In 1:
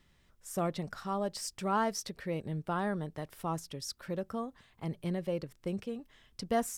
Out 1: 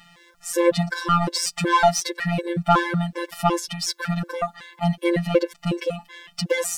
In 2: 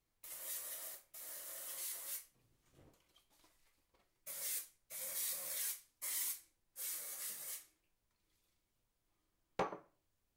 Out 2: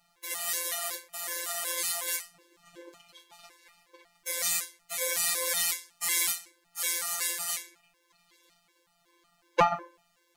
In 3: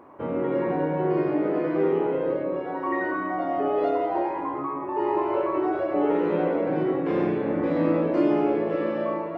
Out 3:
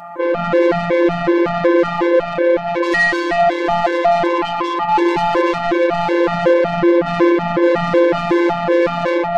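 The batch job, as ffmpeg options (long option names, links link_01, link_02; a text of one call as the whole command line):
ffmpeg -i in.wav -filter_complex "[0:a]asplit=2[link_01][link_02];[link_02]highpass=frequency=720:poles=1,volume=26dB,asoftclip=type=tanh:threshold=-10dB[link_03];[link_01][link_03]amix=inputs=2:normalize=0,lowpass=frequency=3500:poles=1,volume=-6dB,afftfilt=real='hypot(re,im)*cos(PI*b)':imag='0':win_size=1024:overlap=0.75,afftfilt=real='re*gt(sin(2*PI*2.7*pts/sr)*(1-2*mod(floor(b*sr/1024/290),2)),0)':imag='im*gt(sin(2*PI*2.7*pts/sr)*(1-2*mod(floor(b*sr/1024/290),2)),0)':win_size=1024:overlap=0.75,volume=9dB" out.wav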